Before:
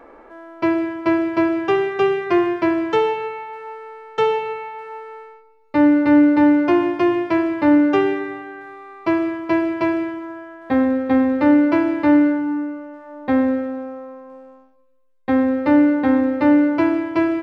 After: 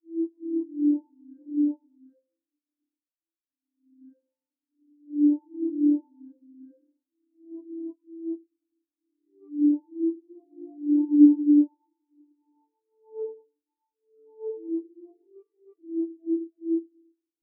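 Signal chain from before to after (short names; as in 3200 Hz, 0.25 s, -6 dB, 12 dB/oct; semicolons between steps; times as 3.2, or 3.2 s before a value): whole clip reversed; bell 100 Hz -12.5 dB 1 oct; on a send: diffused feedback echo 0.904 s, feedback 75%, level -14 dB; on the sum: FDN reverb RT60 1.7 s, low-frequency decay 1.1×, high-frequency decay 0.4×, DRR 1.5 dB; spectral expander 4:1; gain -4 dB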